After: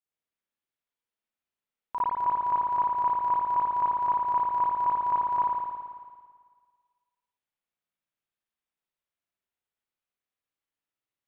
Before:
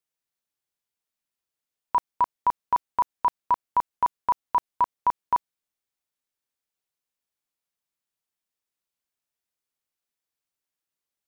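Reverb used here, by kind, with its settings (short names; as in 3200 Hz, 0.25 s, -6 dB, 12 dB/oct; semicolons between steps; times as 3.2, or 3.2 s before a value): spring tank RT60 1.7 s, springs 55 ms, chirp 70 ms, DRR -9.5 dB; gain -11 dB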